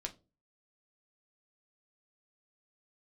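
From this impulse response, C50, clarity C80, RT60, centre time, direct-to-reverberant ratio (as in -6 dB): 18.5 dB, 25.5 dB, 0.30 s, 7 ms, 2.5 dB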